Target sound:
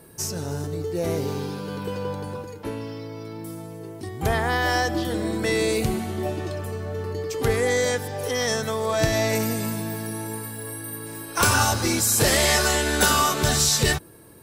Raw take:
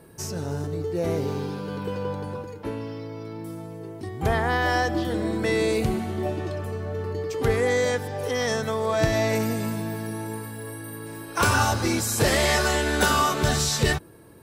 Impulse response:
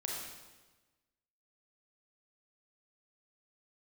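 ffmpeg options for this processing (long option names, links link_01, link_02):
-af "aeval=exprs='0.299*(cos(1*acos(clip(val(0)/0.299,-1,1)))-cos(1*PI/2))+0.0211*(cos(2*acos(clip(val(0)/0.299,-1,1)))-cos(2*PI/2))':channel_layout=same,highshelf=frequency=4400:gain=8.5"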